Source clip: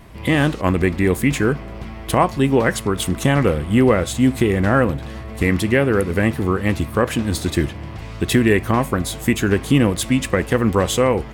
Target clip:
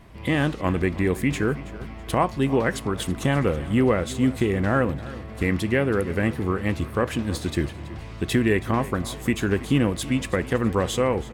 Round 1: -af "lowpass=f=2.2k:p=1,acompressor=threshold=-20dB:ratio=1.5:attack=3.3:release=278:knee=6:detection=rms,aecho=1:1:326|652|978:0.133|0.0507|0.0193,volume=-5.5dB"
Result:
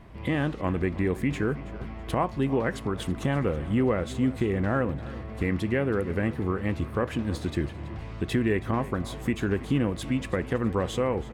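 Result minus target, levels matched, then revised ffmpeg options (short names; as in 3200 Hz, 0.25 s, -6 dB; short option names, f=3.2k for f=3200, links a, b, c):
8000 Hz band -6.0 dB; compressor: peak gain reduction +4.5 dB
-af "lowpass=f=7.5k:p=1,aecho=1:1:326|652|978:0.133|0.0507|0.0193,volume=-5.5dB"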